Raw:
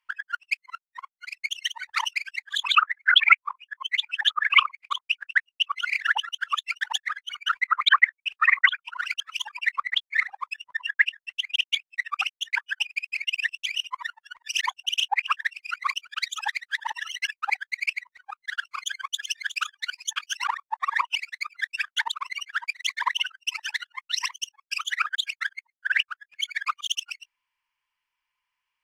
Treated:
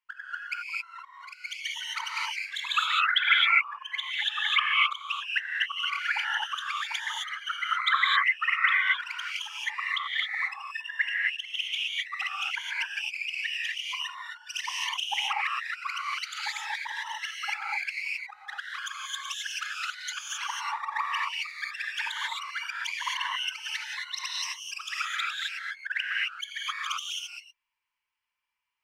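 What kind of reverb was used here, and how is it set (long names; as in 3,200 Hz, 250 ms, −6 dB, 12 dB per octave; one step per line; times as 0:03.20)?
reverb whose tail is shaped and stops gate 290 ms rising, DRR −4 dB
level −8.5 dB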